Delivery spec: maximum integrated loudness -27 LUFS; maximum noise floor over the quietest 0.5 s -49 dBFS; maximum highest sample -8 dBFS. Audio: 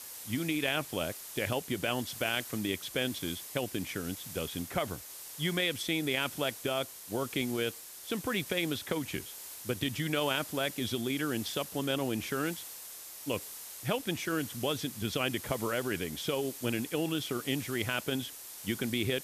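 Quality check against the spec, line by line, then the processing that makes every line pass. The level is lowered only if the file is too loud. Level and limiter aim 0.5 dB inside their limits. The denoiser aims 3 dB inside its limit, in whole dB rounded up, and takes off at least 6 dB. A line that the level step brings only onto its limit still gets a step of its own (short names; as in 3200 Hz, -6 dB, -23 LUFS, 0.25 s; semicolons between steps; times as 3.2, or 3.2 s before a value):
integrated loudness -33.5 LUFS: OK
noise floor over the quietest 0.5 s -46 dBFS: fail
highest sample -16.5 dBFS: OK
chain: denoiser 6 dB, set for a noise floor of -46 dBFS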